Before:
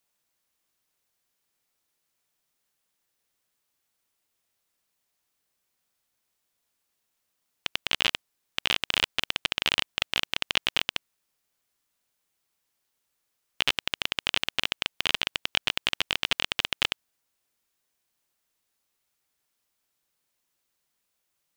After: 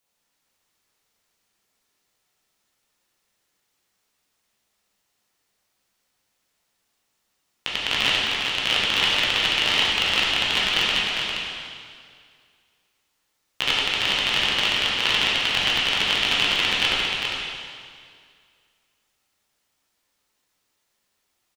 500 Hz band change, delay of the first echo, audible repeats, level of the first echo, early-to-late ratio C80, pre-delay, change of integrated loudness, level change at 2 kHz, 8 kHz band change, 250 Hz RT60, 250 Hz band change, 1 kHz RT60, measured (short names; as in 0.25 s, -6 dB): +8.0 dB, 0.402 s, 1, -5.0 dB, -1.5 dB, 6 ms, +7.0 dB, +8.0 dB, +6.0 dB, 2.1 s, +8.5 dB, 2.1 s